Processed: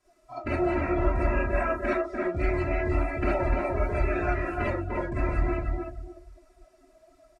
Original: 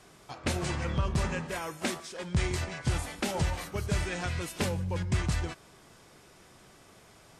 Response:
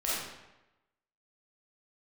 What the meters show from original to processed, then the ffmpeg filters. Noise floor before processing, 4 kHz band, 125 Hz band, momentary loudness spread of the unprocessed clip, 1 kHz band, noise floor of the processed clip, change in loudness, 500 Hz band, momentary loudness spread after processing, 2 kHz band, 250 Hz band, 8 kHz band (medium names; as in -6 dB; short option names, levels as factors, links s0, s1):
-57 dBFS, under -10 dB, +0.5 dB, 6 LU, +7.0 dB, -62 dBFS, +4.0 dB, +9.0 dB, 7 LU, +4.0 dB, +5.5 dB, under -20 dB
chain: -filter_complex "[0:a]acrossover=split=3400[s0][s1];[s0]volume=22.4,asoftclip=hard,volume=0.0447[s2];[s1]acompressor=threshold=0.00178:ratio=6[s3];[s2][s3]amix=inputs=2:normalize=0,equalizer=f=3200:w=4.1:g=-7,aecho=1:1:3:0.72,asplit=2[s4][s5];[s5]adelay=297,lowpass=f=3600:p=1,volume=0.708,asplit=2[s6][s7];[s7]adelay=297,lowpass=f=3600:p=1,volume=0.3,asplit=2[s8][s9];[s9]adelay=297,lowpass=f=3600:p=1,volume=0.3,asplit=2[s10][s11];[s11]adelay=297,lowpass=f=3600:p=1,volume=0.3[s12];[s4][s6][s8][s10][s12]amix=inputs=5:normalize=0[s13];[1:a]atrim=start_sample=2205,atrim=end_sample=3528[s14];[s13][s14]afir=irnorm=-1:irlink=0,afftdn=nr=19:nf=-35"